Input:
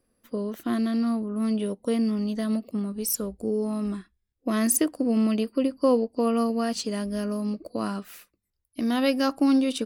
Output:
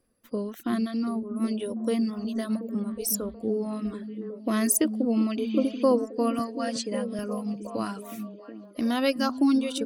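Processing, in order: 5.42–5.81 s: spectral replace 1.4–7.5 kHz before; 6.39–7.19 s: elliptic band-pass 150–9600 Hz; reverb removal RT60 1.9 s; on a send: repeats whose band climbs or falls 366 ms, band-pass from 190 Hz, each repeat 0.7 oct, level -5 dB

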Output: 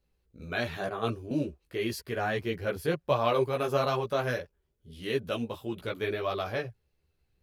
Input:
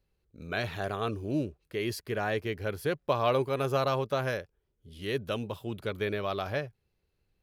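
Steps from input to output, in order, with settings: chorus voices 4, 1.4 Hz, delay 15 ms, depth 3 ms; 0.89–1.31 s: three bands expanded up and down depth 100%; trim +3.5 dB

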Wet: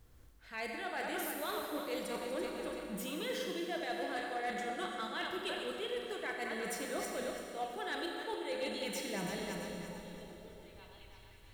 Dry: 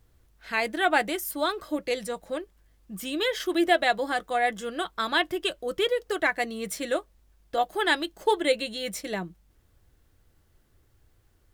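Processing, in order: backward echo that repeats 168 ms, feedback 62%, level -10 dB; reverse; compression 16:1, threshold -37 dBFS, peak gain reduction 22 dB; reverse; repeats whose band climbs or falls 544 ms, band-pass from 160 Hz, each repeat 1.4 oct, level -7.5 dB; Schroeder reverb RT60 2.3 s, combs from 29 ms, DRR 2 dB; overload inside the chain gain 30.5 dB

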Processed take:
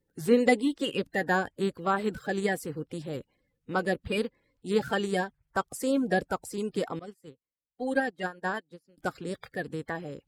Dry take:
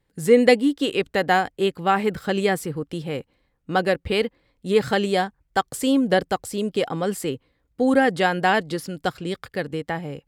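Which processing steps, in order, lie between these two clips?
coarse spectral quantiser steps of 30 dB; 6.99–8.98 s: upward expansion 2.5:1, over -35 dBFS; trim -6.5 dB

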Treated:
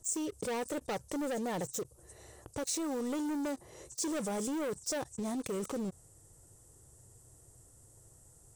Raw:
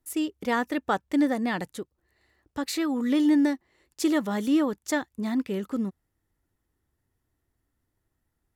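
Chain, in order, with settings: knee-point frequency compression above 3.6 kHz 1.5:1; graphic EQ 125/250/500/2000/4000/8000 Hz +10/-7/+10/-11/-9/+5 dB; waveshaping leveller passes 3; pre-emphasis filter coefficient 0.8; level flattener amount 70%; trim -8.5 dB

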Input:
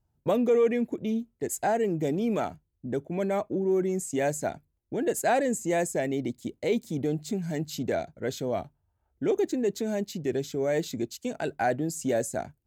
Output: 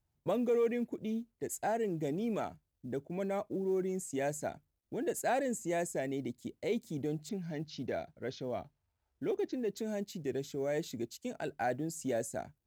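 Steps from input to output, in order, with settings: 7.29–9.77 s: elliptic low-pass 5.8 kHz, stop band 40 dB; companded quantiser 8-bit; trim -7.5 dB

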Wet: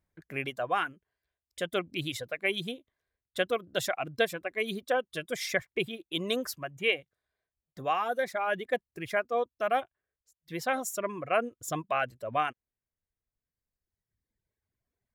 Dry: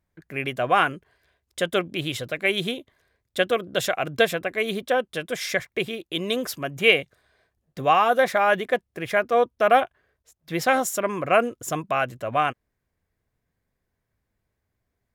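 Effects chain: gain riding within 3 dB 0.5 s; reverb removal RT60 1.8 s; trim -7 dB

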